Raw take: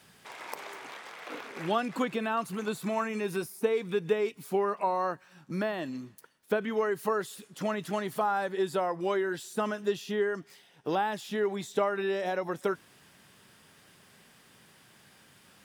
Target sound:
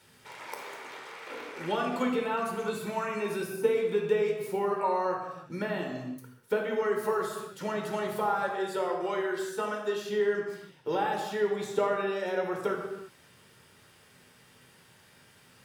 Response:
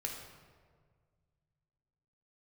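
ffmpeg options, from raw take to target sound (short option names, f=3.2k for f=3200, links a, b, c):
-filter_complex "[0:a]asettb=1/sr,asplit=3[a][b][c];[a]atrim=end=8.494[d];[b]atrim=start=8.49:end=10.04,asetpts=PTS-STARTPTS,afade=t=in:d=0.004:c=qsin,afade=t=out:st=1.546:d=0.004:c=qsin,highpass=f=330:p=1[e];[c]atrim=start=10.036[f];[d][e]acrossfade=d=0.004:c1=hsin:c2=qsin[g];[g][f]acrossfade=d=0.004:c1=qsin:c2=hsin[h];[1:a]atrim=start_sample=2205,afade=t=out:st=0.41:d=0.01,atrim=end_sample=18522[i];[h][i]afir=irnorm=-1:irlink=0"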